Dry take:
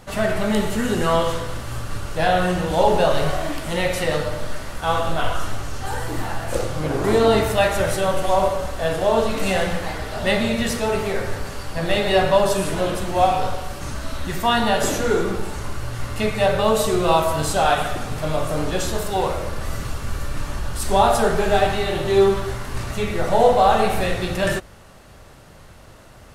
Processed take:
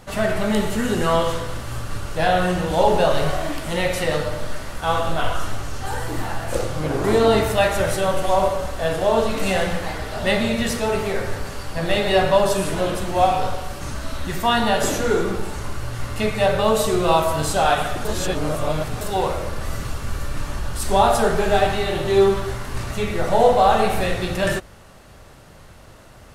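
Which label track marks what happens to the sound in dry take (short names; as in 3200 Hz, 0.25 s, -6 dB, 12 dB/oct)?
18.050000	19.010000	reverse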